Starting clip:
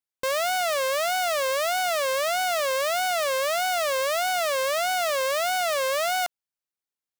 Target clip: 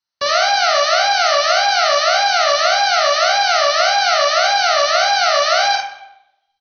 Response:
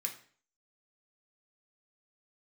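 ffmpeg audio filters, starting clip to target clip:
-filter_complex "[0:a]asplit=2[s0][s1];[s1]equalizer=f=130:t=o:w=2.6:g=-6[s2];[1:a]atrim=start_sample=2205,asetrate=22491,aresample=44100[s3];[s2][s3]afir=irnorm=-1:irlink=0,volume=1.19[s4];[s0][s4]amix=inputs=2:normalize=0,asetrate=48000,aresample=44100,aecho=1:1:47|72:0.668|0.282,volume=1.19" -ar 44100 -c:a ac3 -b:a 48k

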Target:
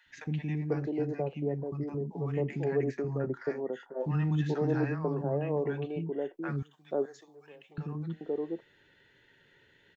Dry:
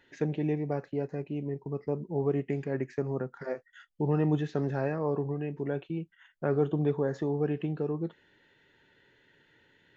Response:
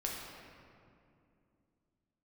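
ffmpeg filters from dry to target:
-filter_complex "[0:a]asettb=1/sr,asplit=3[s0][s1][s2];[s0]atrim=end=6.564[s3];[s1]atrim=start=6.56:end=7.72,asetpts=PTS-STARTPTS,afade=t=in:d=0.004:c=qsin,afade=t=out:st=1.156:d=0.004:c=qsin,aderivative[s4];[s2]atrim=start=7.716[s5];[s3][s4]acrossfade=d=0.004:c1=hsin:c2=qsin[s6];[s6][s5]acrossfade=d=0.004:c1=qsin:c2=hsin,acrossover=split=260|910[s7][s8][s9];[s7]adelay=60[s10];[s8]adelay=490[s11];[s10][s11][s9]amix=inputs=3:normalize=0,volume=1.19"

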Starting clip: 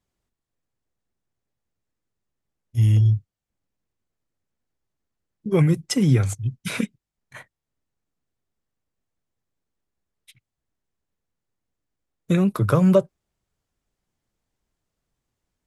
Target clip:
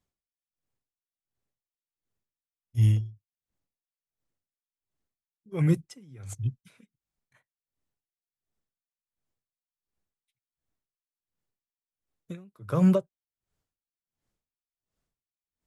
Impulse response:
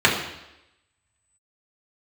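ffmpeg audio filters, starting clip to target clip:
-af "aeval=exprs='val(0)*pow(10,-32*(0.5-0.5*cos(2*PI*1.4*n/s))/20)':c=same,volume=0.75"

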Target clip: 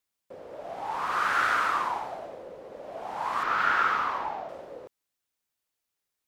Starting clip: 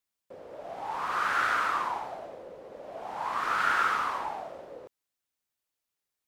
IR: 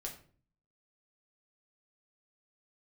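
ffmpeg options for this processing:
-filter_complex "[0:a]asettb=1/sr,asplit=3[s0][s1][s2];[s0]atrim=end=3.434[s3];[s1]atrim=start=3.43:end=4.49,asetpts=PTS-STARTPTS,afade=t=in:d=0.004:c=qsin,afade=t=out:st=1.056:d=0.004:c=qsin,equalizer=f=10000:w=0.91:g=-15[s4];[s2]atrim=start=4.486[s5];[s3][s4]acrossfade=d=0.004:c1=hsin:c2=qsin[s6];[s6][s5]acrossfade=d=0.004:c1=qsin:c2=hsin,volume=1.26"

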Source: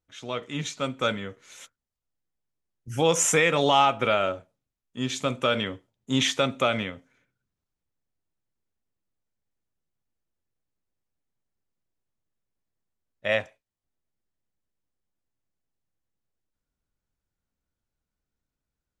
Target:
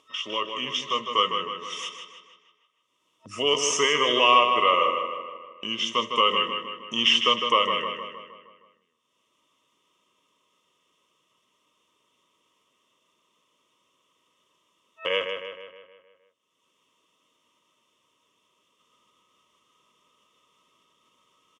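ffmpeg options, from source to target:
-filter_complex "[0:a]agate=range=0.0501:threshold=0.002:ratio=16:detection=peak,superequalizer=9b=0.282:10b=2.51:11b=0.355:13b=2.82:14b=0.447,acompressor=mode=upward:threshold=0.0794:ratio=2.5,asetrate=38808,aresample=44100,highpass=350,lowpass=7500,asplit=2[s0][s1];[s1]adelay=156,lowpass=f=4900:p=1,volume=0.501,asplit=2[s2][s3];[s3]adelay=156,lowpass=f=4900:p=1,volume=0.54,asplit=2[s4][s5];[s5]adelay=156,lowpass=f=4900:p=1,volume=0.54,asplit=2[s6][s7];[s7]adelay=156,lowpass=f=4900:p=1,volume=0.54,asplit=2[s8][s9];[s9]adelay=156,lowpass=f=4900:p=1,volume=0.54,asplit=2[s10][s11];[s11]adelay=156,lowpass=f=4900:p=1,volume=0.54,asplit=2[s12][s13];[s13]adelay=156,lowpass=f=4900:p=1,volume=0.54[s14];[s0][s2][s4][s6][s8][s10][s12][s14]amix=inputs=8:normalize=0,volume=0.841"

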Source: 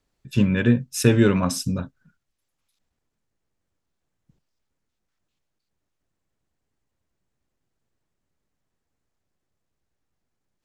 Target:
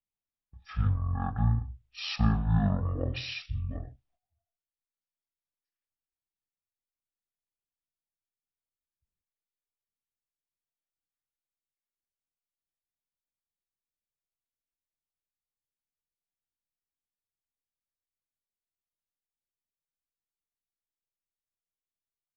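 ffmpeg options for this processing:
-af "agate=range=0.141:threshold=0.00562:ratio=16:detection=peak,asetrate=20992,aresample=44100,volume=0.355"

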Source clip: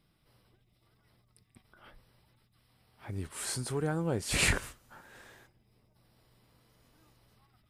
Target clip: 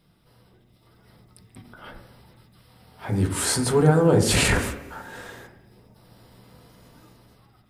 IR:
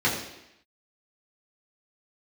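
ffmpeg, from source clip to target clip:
-filter_complex "[0:a]alimiter=limit=0.0631:level=0:latency=1:release=29,dynaudnorm=f=250:g=7:m=1.88,asplit=2[s0][s1];[1:a]atrim=start_sample=2205,lowpass=2200[s2];[s1][s2]afir=irnorm=-1:irlink=0,volume=0.188[s3];[s0][s3]amix=inputs=2:normalize=0,volume=2.11"

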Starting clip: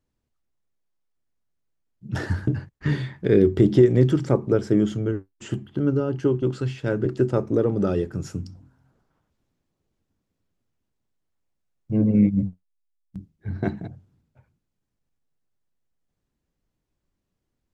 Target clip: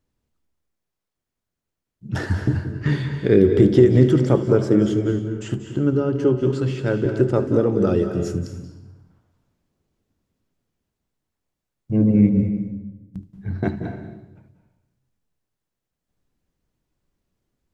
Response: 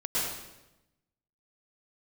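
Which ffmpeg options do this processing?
-filter_complex "[0:a]asplit=2[s0][s1];[1:a]atrim=start_sample=2205,adelay=75[s2];[s1][s2]afir=irnorm=-1:irlink=0,volume=0.168[s3];[s0][s3]amix=inputs=2:normalize=0,volume=1.33"

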